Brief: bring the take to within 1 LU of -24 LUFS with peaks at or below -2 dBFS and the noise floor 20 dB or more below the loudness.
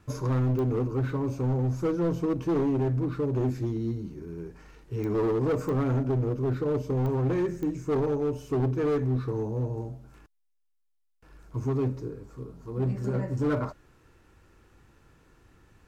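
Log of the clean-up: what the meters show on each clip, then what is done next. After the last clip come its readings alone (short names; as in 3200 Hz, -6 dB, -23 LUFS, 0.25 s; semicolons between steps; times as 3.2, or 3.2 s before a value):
clicks 5; loudness -28.5 LUFS; peak -17.0 dBFS; loudness target -24.0 LUFS
-> de-click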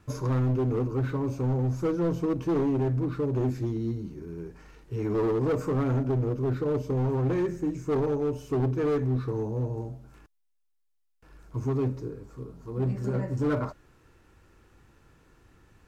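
clicks 0; loudness -28.5 LUFS; peak -21.5 dBFS; loudness target -24.0 LUFS
-> gain +4.5 dB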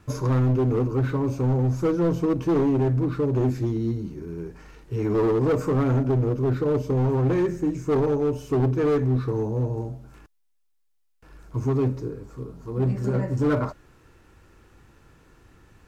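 loudness -24.0 LUFS; peak -17.0 dBFS; noise floor -67 dBFS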